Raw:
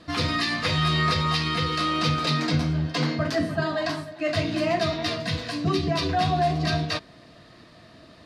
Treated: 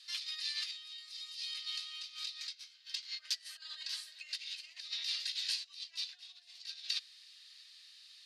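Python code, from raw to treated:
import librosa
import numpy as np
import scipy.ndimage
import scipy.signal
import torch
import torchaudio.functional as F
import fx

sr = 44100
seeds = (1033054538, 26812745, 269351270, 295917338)

y = fx.high_shelf(x, sr, hz=4100.0, db=11.5, at=(0.98, 1.54))
y = fx.over_compress(y, sr, threshold_db=-29.0, ratio=-0.5)
y = fx.ladder_highpass(y, sr, hz=2700.0, resonance_pct=20)
y = F.gain(torch.from_numpy(y), 1.0).numpy()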